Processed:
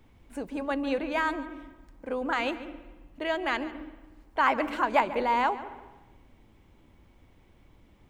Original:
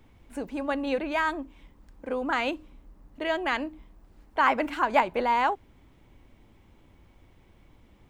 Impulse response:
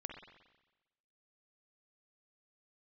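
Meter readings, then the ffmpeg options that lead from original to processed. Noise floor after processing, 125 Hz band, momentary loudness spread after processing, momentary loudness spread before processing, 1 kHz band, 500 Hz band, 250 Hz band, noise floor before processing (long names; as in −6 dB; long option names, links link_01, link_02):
−59 dBFS, can't be measured, 19 LU, 15 LU, −1.5 dB, −1.0 dB, −0.5 dB, −59 dBFS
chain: -filter_complex "[0:a]asplit=2[link_01][link_02];[link_02]equalizer=frequency=290:width=0.82:gain=8.5[link_03];[1:a]atrim=start_sample=2205,adelay=143[link_04];[link_03][link_04]afir=irnorm=-1:irlink=0,volume=-12.5dB[link_05];[link_01][link_05]amix=inputs=2:normalize=0,volume=-1.5dB"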